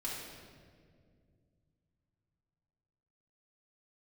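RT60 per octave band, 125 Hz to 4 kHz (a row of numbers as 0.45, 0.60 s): 4.2, 3.2, 2.5, 1.7, 1.5, 1.3 s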